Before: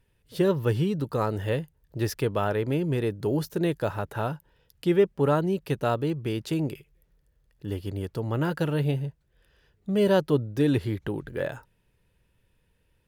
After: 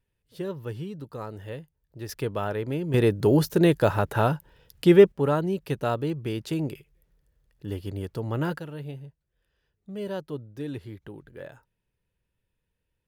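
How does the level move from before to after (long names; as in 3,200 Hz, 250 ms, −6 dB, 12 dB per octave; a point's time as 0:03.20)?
−10 dB
from 0:02.09 −3 dB
from 0:02.94 +6.5 dB
from 0:05.12 −1 dB
from 0:08.59 −11.5 dB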